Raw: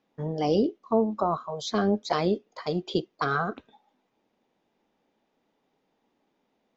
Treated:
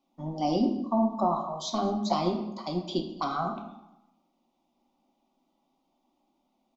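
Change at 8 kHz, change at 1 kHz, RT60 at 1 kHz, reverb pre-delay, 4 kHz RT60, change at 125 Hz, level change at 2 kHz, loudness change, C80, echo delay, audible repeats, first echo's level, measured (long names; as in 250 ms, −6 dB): can't be measured, +0.5 dB, 0.90 s, 3 ms, 0.60 s, −3.0 dB, −13.0 dB, −1.5 dB, 9.5 dB, 211 ms, 1, −21.5 dB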